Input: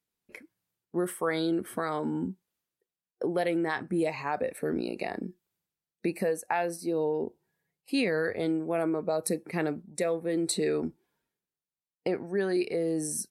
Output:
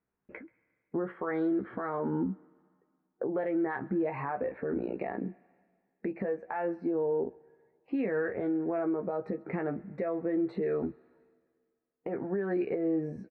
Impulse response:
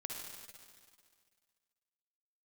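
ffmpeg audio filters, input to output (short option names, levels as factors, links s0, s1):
-filter_complex "[0:a]lowpass=f=1800:w=0.5412,lowpass=f=1800:w=1.3066,asplit=2[s0][s1];[s1]adelay=15,volume=0.501[s2];[s0][s2]amix=inputs=2:normalize=0,acompressor=threshold=0.0398:ratio=6,alimiter=level_in=1.58:limit=0.0631:level=0:latency=1:release=235,volume=0.631,asplit=2[s3][s4];[1:a]atrim=start_sample=2205,lowshelf=f=470:g=-11.5,adelay=133[s5];[s4][s5]afir=irnorm=-1:irlink=0,volume=0.106[s6];[s3][s6]amix=inputs=2:normalize=0,volume=1.78"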